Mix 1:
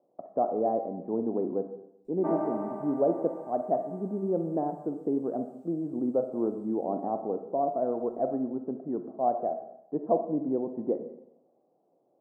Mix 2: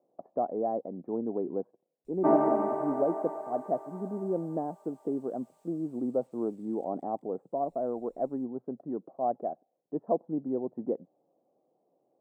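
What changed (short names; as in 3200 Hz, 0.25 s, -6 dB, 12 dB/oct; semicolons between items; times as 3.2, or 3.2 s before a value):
background +8.5 dB; reverb: off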